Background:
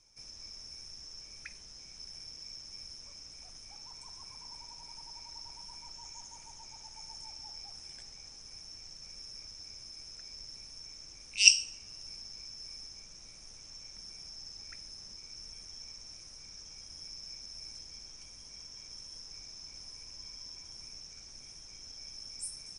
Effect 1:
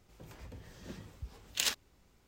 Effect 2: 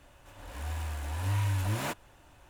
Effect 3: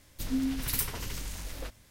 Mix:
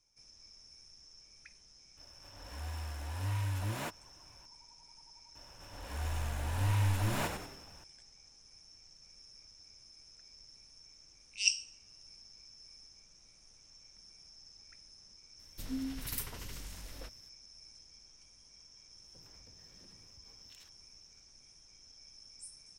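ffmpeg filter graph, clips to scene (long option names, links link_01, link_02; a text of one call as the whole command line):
ffmpeg -i bed.wav -i cue0.wav -i cue1.wav -i cue2.wav -filter_complex "[2:a]asplit=2[link_01][link_02];[0:a]volume=-9.5dB[link_03];[link_02]asplit=7[link_04][link_05][link_06][link_07][link_08][link_09][link_10];[link_05]adelay=92,afreqshift=-100,volume=-6.5dB[link_11];[link_06]adelay=184,afreqshift=-200,volume=-13.1dB[link_12];[link_07]adelay=276,afreqshift=-300,volume=-19.6dB[link_13];[link_08]adelay=368,afreqshift=-400,volume=-26.2dB[link_14];[link_09]adelay=460,afreqshift=-500,volume=-32.7dB[link_15];[link_10]adelay=552,afreqshift=-600,volume=-39.3dB[link_16];[link_04][link_11][link_12][link_13][link_14][link_15][link_16]amix=inputs=7:normalize=0[link_17];[1:a]acompressor=threshold=-47dB:ratio=6:attack=3.2:release=140:knee=1:detection=peak[link_18];[link_01]atrim=end=2.49,asetpts=PTS-STARTPTS,volume=-5.5dB,afade=type=in:duration=0.004:curve=hsin,afade=type=out:start_time=2.486:duration=0.004:curve=hsin,adelay=1970[link_19];[link_17]atrim=end=2.49,asetpts=PTS-STARTPTS,volume=-1.5dB,afade=type=in:duration=0.004:curve=hsin,afade=type=out:start_time=2.486:duration=0.004:curve=hsin,adelay=5350[link_20];[3:a]atrim=end=1.9,asetpts=PTS-STARTPTS,volume=-8dB,afade=type=in:duration=0.004:curve=hsin,afade=type=out:start_time=1.896:duration=0.004:curve=hsin,adelay=15390[link_21];[link_18]atrim=end=2.27,asetpts=PTS-STARTPTS,volume=-11dB,afade=type=in:duration=0.004:curve=hsin,afade=type=out:start_time=2.266:duration=0.004:curve=hsin,adelay=18950[link_22];[link_03][link_19][link_20][link_21][link_22]amix=inputs=5:normalize=0" out.wav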